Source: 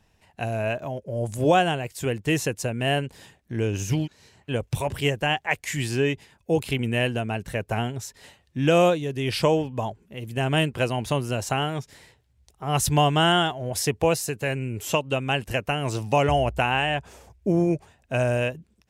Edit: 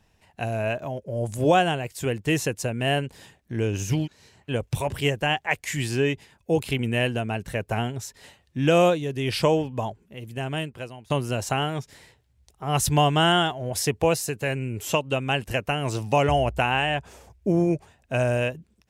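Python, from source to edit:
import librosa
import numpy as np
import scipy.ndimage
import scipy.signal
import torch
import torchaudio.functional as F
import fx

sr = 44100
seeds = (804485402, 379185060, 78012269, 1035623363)

y = fx.edit(x, sr, fx.fade_out_to(start_s=9.78, length_s=1.32, floor_db=-22.5), tone=tone)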